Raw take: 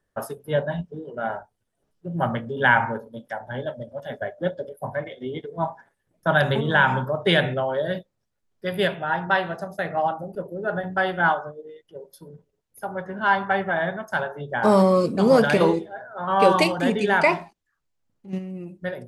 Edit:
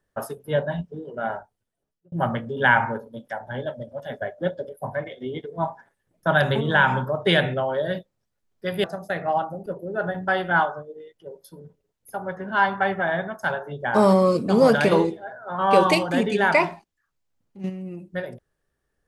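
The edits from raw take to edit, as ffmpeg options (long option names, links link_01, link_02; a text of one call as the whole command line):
ffmpeg -i in.wav -filter_complex "[0:a]asplit=3[link_01][link_02][link_03];[link_01]atrim=end=2.12,asetpts=PTS-STARTPTS,afade=type=out:start_time=1.33:duration=0.79[link_04];[link_02]atrim=start=2.12:end=8.842,asetpts=PTS-STARTPTS,afade=type=in:duration=0.004:curve=hsin[link_05];[link_03]atrim=start=9.528[link_06];[link_04][link_05]concat=n=2:v=0:a=1[link_07];[link_07][link_06]acrossfade=duration=0.004:curve1=hsin:curve2=hsin" out.wav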